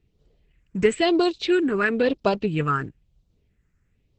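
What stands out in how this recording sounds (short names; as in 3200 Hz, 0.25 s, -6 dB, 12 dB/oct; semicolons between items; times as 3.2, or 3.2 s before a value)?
phasing stages 4, 1 Hz, lowest notch 660–1800 Hz; Opus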